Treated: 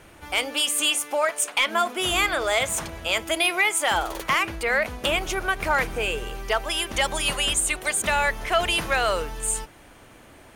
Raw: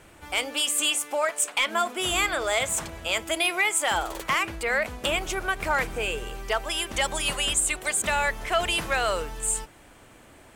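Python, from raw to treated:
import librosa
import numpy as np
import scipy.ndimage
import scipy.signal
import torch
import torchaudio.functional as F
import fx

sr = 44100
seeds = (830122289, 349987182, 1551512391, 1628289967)

y = fx.notch(x, sr, hz=7700.0, q=7.1)
y = y * 10.0 ** (2.5 / 20.0)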